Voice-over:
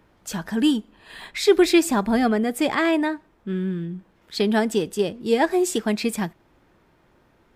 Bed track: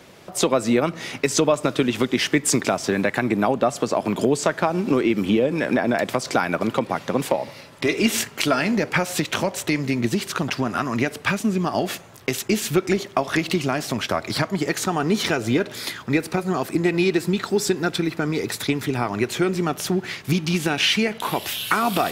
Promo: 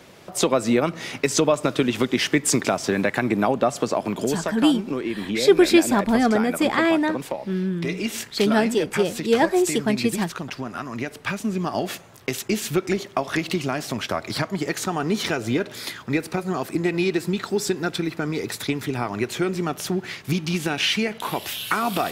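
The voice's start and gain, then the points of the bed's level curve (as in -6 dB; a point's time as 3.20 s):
4.00 s, +1.0 dB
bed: 3.87 s -0.5 dB
4.53 s -7.5 dB
10.95 s -7.5 dB
11.66 s -2.5 dB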